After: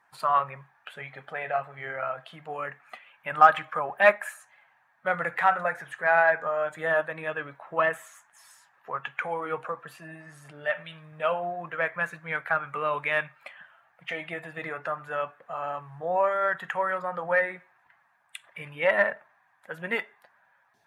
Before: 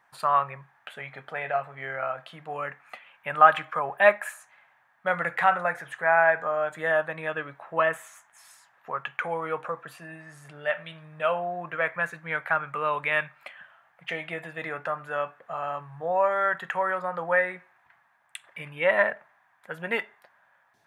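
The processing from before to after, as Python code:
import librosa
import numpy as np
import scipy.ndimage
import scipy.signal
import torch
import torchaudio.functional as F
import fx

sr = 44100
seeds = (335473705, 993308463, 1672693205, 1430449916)

y = fx.spec_quant(x, sr, step_db=15)
y = fx.cheby_harmonics(y, sr, harmonics=(7,), levels_db=(-39,), full_scale_db=-3.0)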